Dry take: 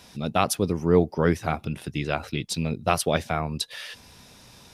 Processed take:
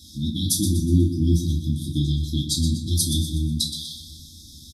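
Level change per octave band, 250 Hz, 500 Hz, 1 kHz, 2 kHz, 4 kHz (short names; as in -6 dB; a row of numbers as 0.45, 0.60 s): +3.5 dB, -12.0 dB, under -40 dB, under -40 dB, +6.5 dB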